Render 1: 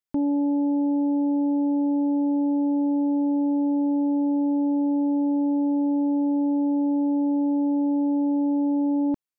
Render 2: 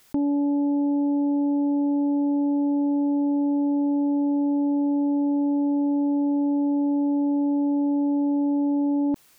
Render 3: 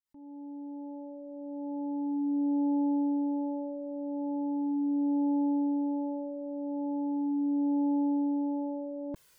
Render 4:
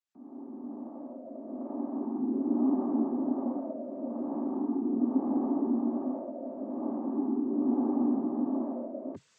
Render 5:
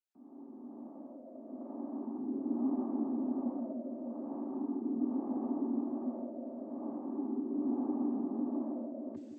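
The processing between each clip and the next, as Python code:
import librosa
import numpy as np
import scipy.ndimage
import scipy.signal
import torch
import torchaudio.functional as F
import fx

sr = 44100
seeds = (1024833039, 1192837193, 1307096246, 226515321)

y1 = fx.env_flatten(x, sr, amount_pct=50)
y2 = fx.fade_in_head(y1, sr, length_s=2.38)
y2 = fx.comb_cascade(y2, sr, direction='falling', hz=0.39)
y2 = y2 * 10.0 ** (-1.5 / 20.0)
y3 = fx.noise_vocoder(y2, sr, seeds[0], bands=16)
y4 = fx.echo_wet_lowpass(y3, sr, ms=153, feedback_pct=76, hz=430.0, wet_db=-8)
y4 = y4 * 10.0 ** (-7.0 / 20.0)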